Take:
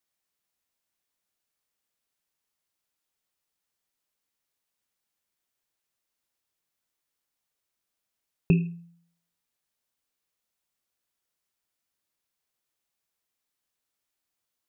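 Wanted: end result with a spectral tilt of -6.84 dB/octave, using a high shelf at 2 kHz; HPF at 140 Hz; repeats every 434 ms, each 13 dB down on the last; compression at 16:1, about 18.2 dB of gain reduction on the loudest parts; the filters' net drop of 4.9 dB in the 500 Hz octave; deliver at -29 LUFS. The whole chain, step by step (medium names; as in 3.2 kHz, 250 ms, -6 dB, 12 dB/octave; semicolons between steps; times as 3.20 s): high-pass 140 Hz; peaking EQ 500 Hz -7.5 dB; treble shelf 2 kHz +3 dB; compression 16:1, threshold -37 dBFS; feedback delay 434 ms, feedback 22%, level -13 dB; trim +19.5 dB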